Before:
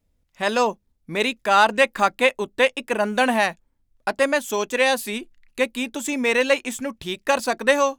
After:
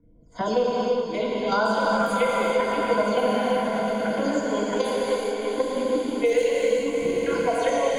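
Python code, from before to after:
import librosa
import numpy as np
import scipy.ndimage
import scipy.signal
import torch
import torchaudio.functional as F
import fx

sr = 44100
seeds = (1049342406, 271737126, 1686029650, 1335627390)

p1 = fx.spec_delay(x, sr, highs='early', ms=129)
p2 = fx.phaser_stages(p1, sr, stages=4, low_hz=180.0, high_hz=2600.0, hz=0.75, feedback_pct=5)
p3 = fx.ripple_eq(p2, sr, per_octave=1.8, db=14)
p4 = fx.env_lowpass(p3, sr, base_hz=930.0, full_db=-15.5)
p5 = p4 + fx.echo_swell(p4, sr, ms=112, loudest=5, wet_db=-16.0, dry=0)
p6 = fx.level_steps(p5, sr, step_db=10)
p7 = fx.peak_eq(p6, sr, hz=2400.0, db=-7.5, octaves=2.7)
p8 = fx.rev_gated(p7, sr, seeds[0], gate_ms=440, shape='flat', drr_db=-5.0)
y = fx.band_squash(p8, sr, depth_pct=70)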